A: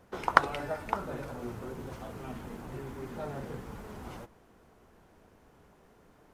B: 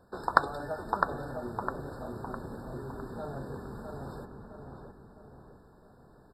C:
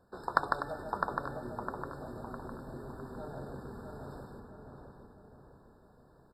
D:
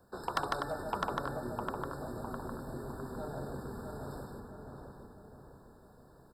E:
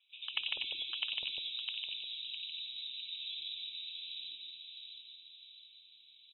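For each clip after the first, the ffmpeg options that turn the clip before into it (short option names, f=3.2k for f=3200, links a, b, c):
-filter_complex "[0:a]asplit=2[a][b];[b]adelay=657,lowpass=f=1.9k:p=1,volume=-4dB,asplit=2[c][d];[d]adelay=657,lowpass=f=1.9k:p=1,volume=0.48,asplit=2[e][f];[f]adelay=657,lowpass=f=1.9k:p=1,volume=0.48,asplit=2[g][h];[h]adelay=657,lowpass=f=1.9k:p=1,volume=0.48,asplit=2[i][j];[j]adelay=657,lowpass=f=1.9k:p=1,volume=0.48,asplit=2[k][l];[l]adelay=657,lowpass=f=1.9k:p=1,volume=0.48[m];[c][e][g][i][k][m]amix=inputs=6:normalize=0[n];[a][n]amix=inputs=2:normalize=0,afftfilt=real='re*eq(mod(floor(b*sr/1024/1800),2),0)':imag='im*eq(mod(floor(b*sr/1024/1800),2),0)':win_size=1024:overlap=0.75,volume=-1dB"
-af "aecho=1:1:151|248|884:0.631|0.266|0.119,volume=-5.5dB"
-filter_complex "[0:a]acrossover=split=280|880|5800[a][b][c][d];[d]acontrast=89[e];[a][b][c][e]amix=inputs=4:normalize=0,asoftclip=type=tanh:threshold=-24dB,volume=2.5dB"
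-filter_complex "[0:a]lowpass=f=3.4k:t=q:w=0.5098,lowpass=f=3.4k:t=q:w=0.6013,lowpass=f=3.4k:t=q:w=0.9,lowpass=f=3.4k:t=q:w=2.563,afreqshift=-4000,acrossover=split=710|2900[a][b][c];[c]adelay=90[d];[a]adelay=200[e];[e][b][d]amix=inputs=3:normalize=0"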